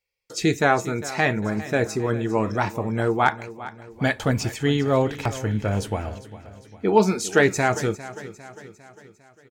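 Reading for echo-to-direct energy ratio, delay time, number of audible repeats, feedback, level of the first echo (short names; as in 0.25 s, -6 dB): -14.5 dB, 0.402 s, 4, 52%, -16.0 dB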